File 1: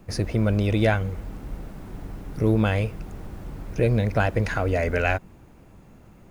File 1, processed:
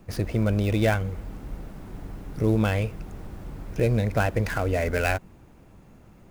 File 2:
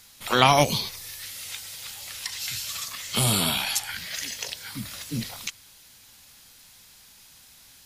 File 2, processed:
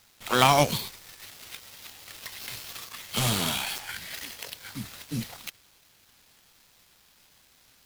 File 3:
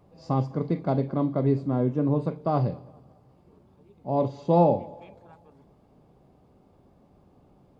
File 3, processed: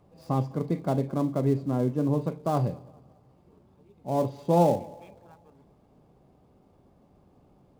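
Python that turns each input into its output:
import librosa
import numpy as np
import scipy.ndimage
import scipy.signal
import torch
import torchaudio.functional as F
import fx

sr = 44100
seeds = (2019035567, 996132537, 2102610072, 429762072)

y = fx.dead_time(x, sr, dead_ms=0.067)
y = F.gain(torch.from_numpy(y), -1.5).numpy()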